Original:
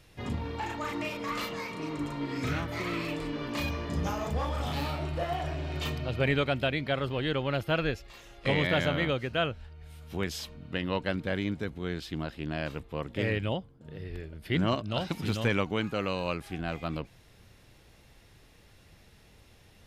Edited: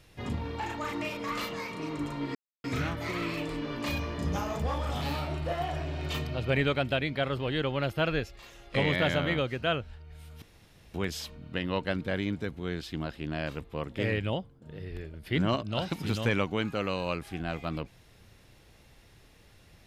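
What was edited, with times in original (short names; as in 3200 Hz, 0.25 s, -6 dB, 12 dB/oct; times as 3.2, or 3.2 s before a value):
2.35 insert silence 0.29 s
10.13 insert room tone 0.52 s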